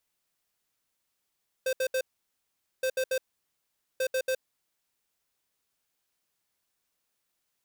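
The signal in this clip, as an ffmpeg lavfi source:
ffmpeg -f lavfi -i "aevalsrc='0.0422*(2*lt(mod(520*t,1),0.5)-1)*clip(min(mod(mod(t,1.17),0.14),0.07-mod(mod(t,1.17),0.14))/0.005,0,1)*lt(mod(t,1.17),0.42)':duration=3.51:sample_rate=44100" out.wav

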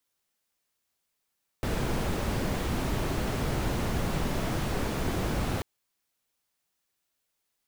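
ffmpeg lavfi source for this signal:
ffmpeg -f lavfi -i "anoisesrc=color=brown:amplitude=0.176:duration=3.99:sample_rate=44100:seed=1" out.wav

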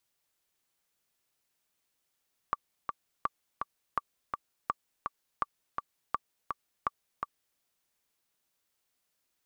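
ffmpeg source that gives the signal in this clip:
ffmpeg -f lavfi -i "aevalsrc='pow(10,(-15-4.5*gte(mod(t,2*60/166),60/166))/20)*sin(2*PI*1160*mod(t,60/166))*exp(-6.91*mod(t,60/166)/0.03)':duration=5.06:sample_rate=44100" out.wav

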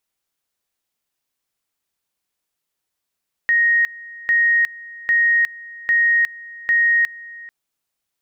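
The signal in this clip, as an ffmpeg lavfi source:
ffmpeg -f lavfi -i "aevalsrc='pow(10,(-12.5-21*gte(mod(t,0.8),0.36))/20)*sin(2*PI*1870*t)':duration=4:sample_rate=44100" out.wav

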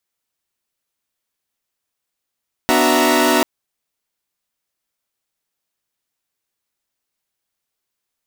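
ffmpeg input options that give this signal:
ffmpeg -f lavfi -i "aevalsrc='0.15*((2*mod(246.94*t,1)-1)+(2*mod(293.66*t,1)-1)+(2*mod(369.99*t,1)-1)+(2*mod(659.26*t,1)-1)+(2*mod(932.33*t,1)-1))':duration=0.74:sample_rate=44100" out.wav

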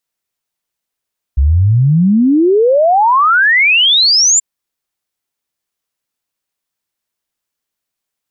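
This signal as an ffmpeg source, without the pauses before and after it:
ffmpeg -f lavfi -i "aevalsrc='0.473*clip(min(t,3.03-t)/0.01,0,1)*sin(2*PI*64*3.03/log(7400/64)*(exp(log(7400/64)*t/3.03)-1))':duration=3.03:sample_rate=44100" out.wav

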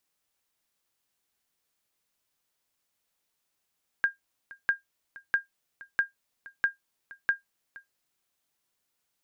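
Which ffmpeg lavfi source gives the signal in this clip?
ffmpeg -f lavfi -i "aevalsrc='0.178*(sin(2*PI*1610*mod(t,0.65))*exp(-6.91*mod(t,0.65)/0.14)+0.0891*sin(2*PI*1610*max(mod(t,0.65)-0.47,0))*exp(-6.91*max(mod(t,0.65)-0.47,0)/0.14))':duration=3.9:sample_rate=44100" out.wav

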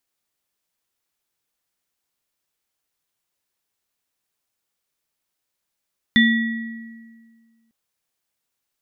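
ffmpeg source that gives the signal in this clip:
ffmpeg -f lavfi -i "aevalsrc='0.237*pow(10,-3*t/1.82)*sin(2*PI*228*t)+0.224*pow(10,-3*t/1.34)*sin(2*PI*1930*t)+0.133*pow(10,-3*t/0.64)*sin(2*PI*3520*t)':duration=1.55:sample_rate=44100" out.wav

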